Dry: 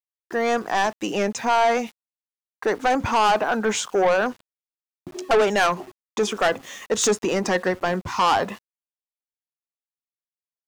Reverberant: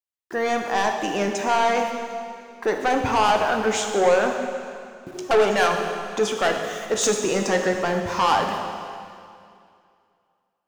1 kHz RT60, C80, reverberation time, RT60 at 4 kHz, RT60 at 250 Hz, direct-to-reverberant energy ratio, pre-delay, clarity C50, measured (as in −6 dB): 2.4 s, 5.5 dB, 2.4 s, 2.2 s, 2.5 s, 3.0 dB, 5 ms, 4.5 dB